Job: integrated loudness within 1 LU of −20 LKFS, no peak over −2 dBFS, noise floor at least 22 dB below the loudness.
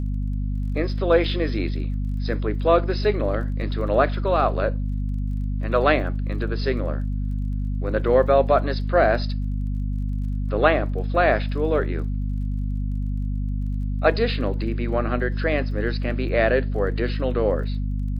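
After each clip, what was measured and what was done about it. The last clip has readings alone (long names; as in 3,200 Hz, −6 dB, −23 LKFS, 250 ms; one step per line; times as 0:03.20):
crackle rate 27 per second; mains hum 50 Hz; hum harmonics up to 250 Hz; level of the hum −22 dBFS; integrated loudness −23.5 LKFS; sample peak −3.0 dBFS; target loudness −20.0 LKFS
→ click removal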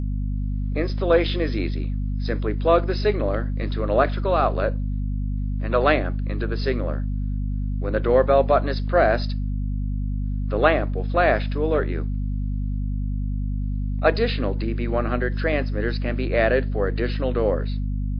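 crackle rate 0.11 per second; mains hum 50 Hz; hum harmonics up to 250 Hz; level of the hum −22 dBFS
→ hum removal 50 Hz, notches 5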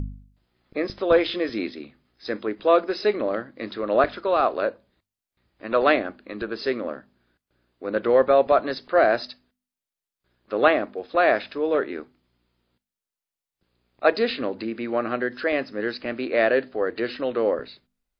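mains hum none found; integrated loudness −23.5 LKFS; sample peak −3.5 dBFS; target loudness −20.0 LKFS
→ level +3.5 dB
brickwall limiter −2 dBFS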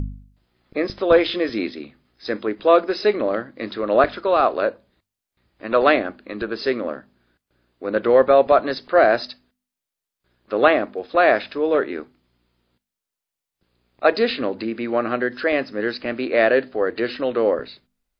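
integrated loudness −20.5 LKFS; sample peak −2.0 dBFS; background noise floor −86 dBFS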